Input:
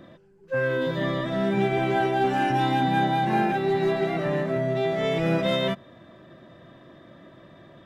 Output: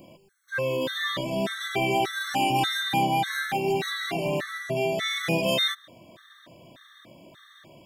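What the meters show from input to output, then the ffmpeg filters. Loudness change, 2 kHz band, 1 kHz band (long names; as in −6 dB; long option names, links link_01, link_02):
−2.0 dB, +1.5 dB, −2.5 dB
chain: -af "crystalizer=i=8:c=0,afftfilt=real='re*gt(sin(2*PI*1.7*pts/sr)*(1-2*mod(floor(b*sr/1024/1100),2)),0)':imag='im*gt(sin(2*PI*1.7*pts/sr)*(1-2*mod(floor(b*sr/1024/1100),2)),0)':win_size=1024:overlap=0.75,volume=-2.5dB"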